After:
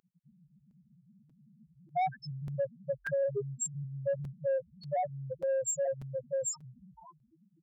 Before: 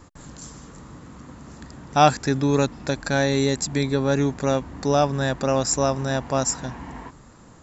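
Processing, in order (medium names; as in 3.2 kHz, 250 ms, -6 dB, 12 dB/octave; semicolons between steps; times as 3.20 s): rattle on loud lows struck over -25 dBFS, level -11 dBFS; comb 5.7 ms, depth 53%; loudest bins only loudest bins 1; tone controls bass -12 dB, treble +4 dB; saturation -22 dBFS, distortion -15 dB; gain riding 2 s; high-pass 100 Hz 12 dB/octave; compression 2.5:1, threshold -31 dBFS, peak gain reduction 5 dB; crackling interface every 0.59 s, samples 256, repeat, from 0.70 s; trim +1.5 dB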